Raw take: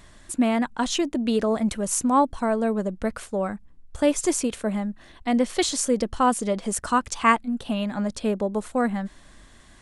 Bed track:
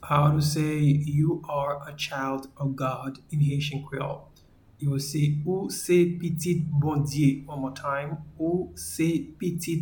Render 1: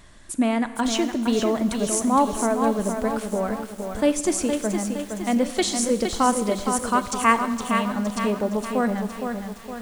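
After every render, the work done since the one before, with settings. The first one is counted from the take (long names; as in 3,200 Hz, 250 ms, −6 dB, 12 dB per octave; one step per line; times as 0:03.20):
four-comb reverb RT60 1.6 s, combs from 27 ms, DRR 12.5 dB
feedback echo at a low word length 464 ms, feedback 55%, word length 7 bits, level −6 dB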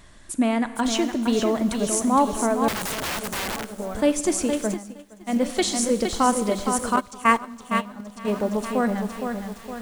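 0:02.68–0:03.66: wrap-around overflow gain 23 dB
0:04.74–0:05.42: expander for the loud parts 2.5 to 1, over −30 dBFS
0:06.96–0:08.28: noise gate −22 dBFS, range −13 dB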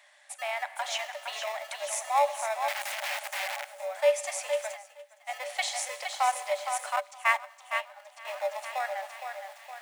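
in parallel at −11 dB: decimation without filtering 29×
on the sum: Chebyshev high-pass with heavy ripple 560 Hz, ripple 9 dB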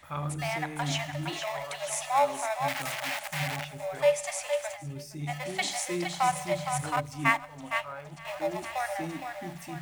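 mix in bed track −13 dB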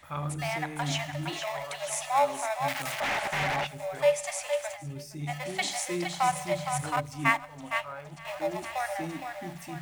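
0:03.00–0:03.67: mid-hump overdrive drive 23 dB, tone 1,800 Hz, clips at −19.5 dBFS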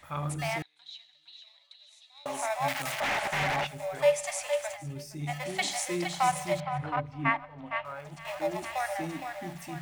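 0:00.62–0:02.26: resonant band-pass 3,900 Hz, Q 18
0:06.60–0:07.85: high-frequency loss of the air 380 metres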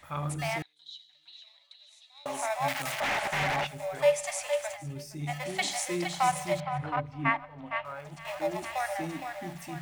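0:00.72–0:01.10: gain on a spectral selection 570–2,900 Hz −13 dB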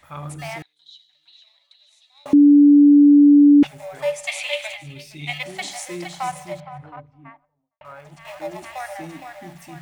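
0:02.33–0:03.63: beep over 289 Hz −7 dBFS
0:04.27–0:05.43: flat-topped bell 3,000 Hz +15.5 dB 1.2 octaves
0:05.98–0:07.81: fade out and dull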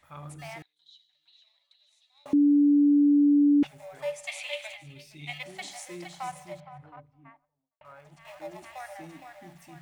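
level −9.5 dB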